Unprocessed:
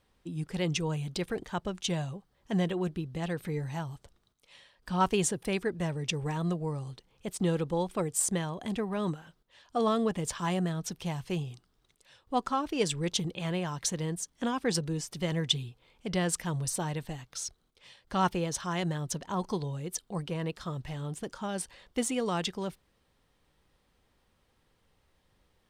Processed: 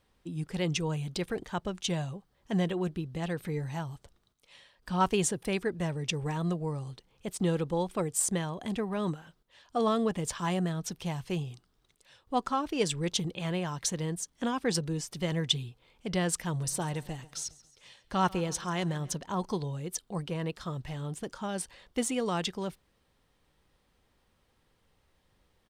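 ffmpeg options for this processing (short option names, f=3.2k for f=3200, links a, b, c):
-filter_complex "[0:a]asplit=3[a][b][c];[a]afade=t=out:st=16.61:d=0.02[d];[b]aecho=1:1:137|274|411|548:0.0891|0.0499|0.0279|0.0157,afade=t=in:st=16.61:d=0.02,afade=t=out:st=19.12:d=0.02[e];[c]afade=t=in:st=19.12:d=0.02[f];[d][e][f]amix=inputs=3:normalize=0"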